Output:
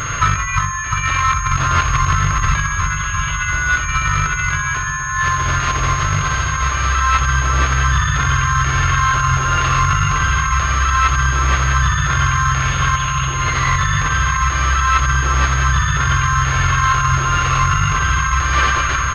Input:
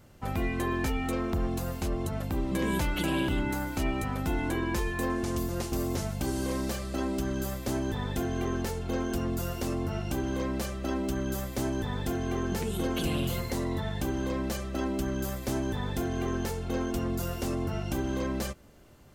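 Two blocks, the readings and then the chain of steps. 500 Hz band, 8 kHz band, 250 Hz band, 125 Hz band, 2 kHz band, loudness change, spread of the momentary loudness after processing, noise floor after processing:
-1.5 dB, +20.5 dB, +0.5 dB, +16.0 dB, +22.5 dB, +15.5 dB, 3 LU, -21 dBFS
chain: brick-wall FIR band-stop 160–1000 Hz; low shelf 260 Hz -10.5 dB; reverse bouncing-ball echo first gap 60 ms, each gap 1.25×, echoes 5; negative-ratio compressor -44 dBFS, ratio -0.5; dark delay 0.35 s, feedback 75%, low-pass 1500 Hz, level -9 dB; hard clip -33.5 dBFS, distortion -23 dB; bell 1300 Hz +6 dB 0.67 oct; maximiser +35 dB; pulse-width modulation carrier 6500 Hz; gain -4.5 dB

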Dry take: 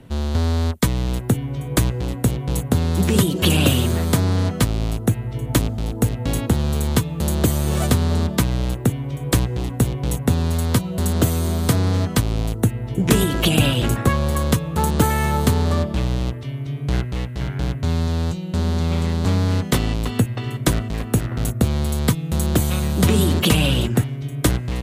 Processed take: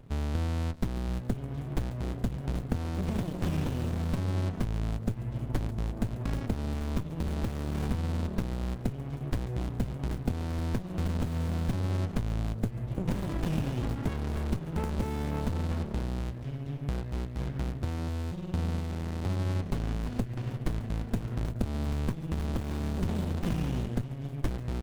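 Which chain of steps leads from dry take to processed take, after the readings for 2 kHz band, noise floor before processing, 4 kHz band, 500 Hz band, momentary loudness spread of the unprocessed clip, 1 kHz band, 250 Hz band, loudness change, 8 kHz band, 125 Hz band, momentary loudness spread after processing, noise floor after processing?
-16.0 dB, -31 dBFS, -20.5 dB, -14.0 dB, 7 LU, -14.0 dB, -12.0 dB, -12.5 dB, -23.0 dB, -11.5 dB, 4 LU, -39 dBFS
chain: compressor, threshold -19 dBFS, peak gain reduction 9.5 dB; feedback echo 0.141 s, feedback 45%, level -17 dB; running maximum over 65 samples; gain -6.5 dB

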